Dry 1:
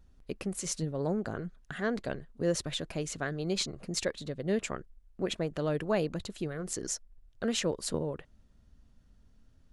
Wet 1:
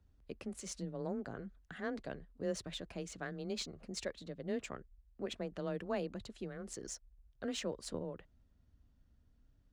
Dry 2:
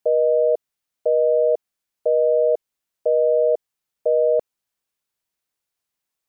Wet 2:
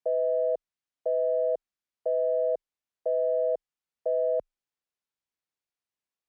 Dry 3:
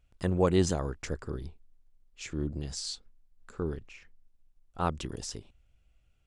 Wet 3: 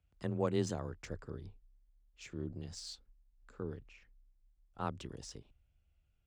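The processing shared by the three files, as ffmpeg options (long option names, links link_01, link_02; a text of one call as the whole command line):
ffmpeg -i in.wav -af "afreqshift=20,adynamicsmooth=sensitivity=6.5:basefreq=7900,volume=-8.5dB" out.wav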